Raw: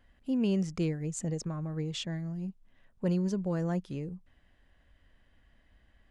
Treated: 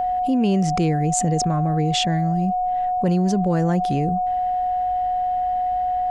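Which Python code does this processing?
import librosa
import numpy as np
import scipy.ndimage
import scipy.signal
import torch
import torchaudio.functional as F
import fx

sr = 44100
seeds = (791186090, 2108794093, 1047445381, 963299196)

y = x + 10.0 ** (-38.0 / 20.0) * np.sin(2.0 * np.pi * 730.0 * np.arange(len(x)) / sr)
y = fx.env_flatten(y, sr, amount_pct=70)
y = y * 10.0 ** (8.5 / 20.0)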